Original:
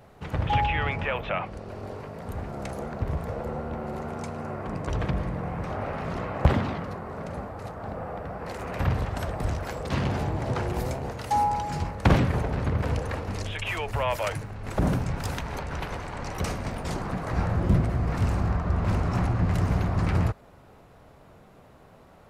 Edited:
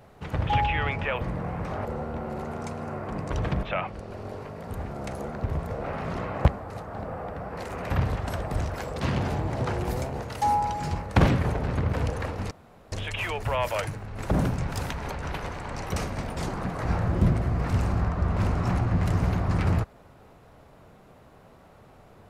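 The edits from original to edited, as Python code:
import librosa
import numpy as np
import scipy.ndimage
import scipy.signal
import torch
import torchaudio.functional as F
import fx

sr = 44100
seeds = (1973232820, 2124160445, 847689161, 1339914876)

y = fx.edit(x, sr, fx.swap(start_s=1.21, length_s=2.21, other_s=5.2, other_length_s=0.64),
    fx.cut(start_s=6.48, length_s=0.89),
    fx.insert_room_tone(at_s=13.4, length_s=0.41), tone=tone)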